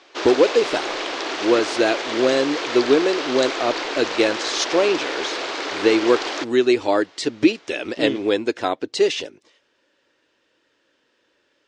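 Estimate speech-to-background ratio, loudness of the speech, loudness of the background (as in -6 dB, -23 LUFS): 5.5 dB, -20.5 LUFS, -26.0 LUFS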